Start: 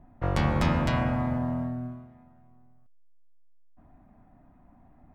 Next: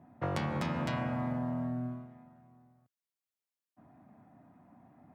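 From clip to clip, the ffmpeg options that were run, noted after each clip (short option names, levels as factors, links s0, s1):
-af "highpass=f=110:w=0.5412,highpass=f=110:w=1.3066,acompressor=threshold=0.0316:ratio=10"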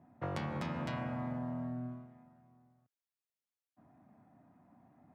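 -af "highshelf=f=7200:g=-4.5,volume=0.596"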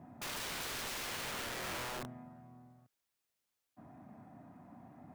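-af "alimiter=level_in=3.16:limit=0.0631:level=0:latency=1:release=41,volume=0.316,aeval=exprs='(mod(178*val(0)+1,2)-1)/178':c=same,volume=2.66"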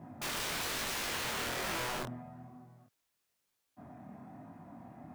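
-af "flanger=delay=18:depth=7.8:speed=1.1,volume=2.37"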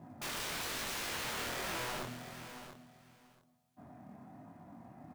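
-filter_complex "[0:a]asplit=2[s0][s1];[s1]acrusher=bits=4:mode=log:mix=0:aa=0.000001,volume=0.355[s2];[s0][s2]amix=inputs=2:normalize=0,aecho=1:1:681|1362:0.282|0.0451,volume=0.531"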